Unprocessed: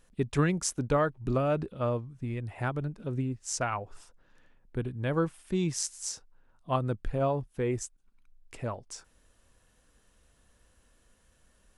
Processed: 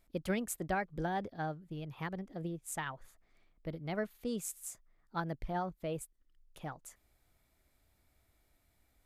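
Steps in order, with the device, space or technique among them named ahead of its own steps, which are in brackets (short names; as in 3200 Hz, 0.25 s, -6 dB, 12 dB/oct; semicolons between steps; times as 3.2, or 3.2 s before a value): nightcore (varispeed +30%); gain -8 dB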